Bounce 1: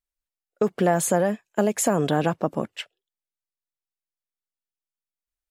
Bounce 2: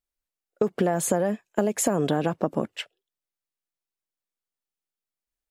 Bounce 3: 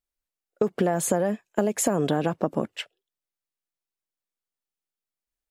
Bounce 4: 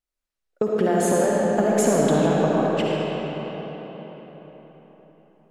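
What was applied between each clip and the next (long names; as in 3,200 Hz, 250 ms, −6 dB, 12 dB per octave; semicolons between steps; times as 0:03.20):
parametric band 330 Hz +4 dB 2.2 octaves; downward compressor, threshold −19 dBFS, peak gain reduction 7 dB
no processing that can be heard
high-shelf EQ 9,700 Hz −7 dB; tape wow and flutter 21 cents; comb and all-pass reverb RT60 4.6 s, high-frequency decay 0.65×, pre-delay 25 ms, DRR −4.5 dB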